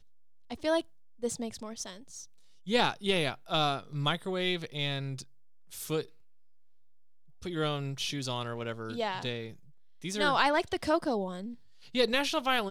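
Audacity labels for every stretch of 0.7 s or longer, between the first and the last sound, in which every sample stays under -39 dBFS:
6.040000	7.420000	silence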